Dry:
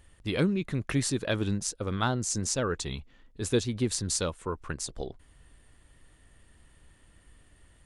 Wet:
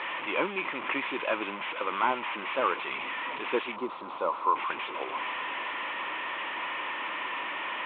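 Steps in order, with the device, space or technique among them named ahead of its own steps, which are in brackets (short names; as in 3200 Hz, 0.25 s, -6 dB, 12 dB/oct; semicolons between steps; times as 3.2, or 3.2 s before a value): digital answering machine (BPF 370–3200 Hz; delta modulation 16 kbps, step -36 dBFS; speaker cabinet 430–3600 Hz, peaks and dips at 440 Hz -7 dB, 710 Hz -6 dB, 1000 Hz +10 dB, 1600 Hz -5 dB, 2400 Hz +5 dB, 3400 Hz +4 dB); 3.76–4.56 band shelf 2300 Hz -15 dB 1.3 oct; gain +7.5 dB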